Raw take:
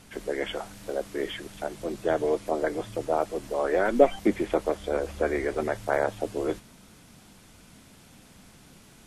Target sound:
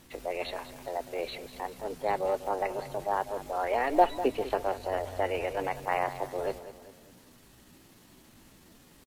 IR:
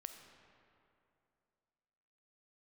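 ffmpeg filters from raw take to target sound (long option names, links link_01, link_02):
-af "acrusher=bits=9:mode=log:mix=0:aa=0.000001,asetrate=55563,aresample=44100,atempo=0.793701,aecho=1:1:198|396|594|792:0.211|0.093|0.0409|0.018,volume=-4dB"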